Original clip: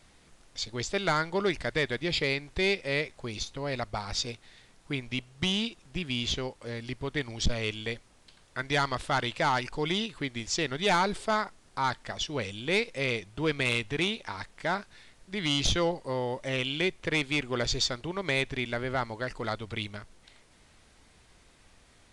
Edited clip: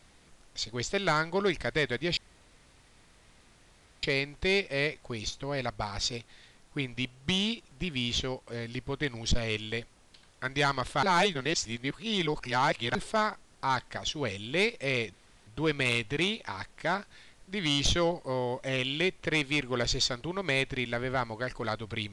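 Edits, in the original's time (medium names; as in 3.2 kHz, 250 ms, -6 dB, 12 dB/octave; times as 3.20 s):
2.17 s: insert room tone 1.86 s
9.17–11.09 s: reverse
13.27 s: insert room tone 0.34 s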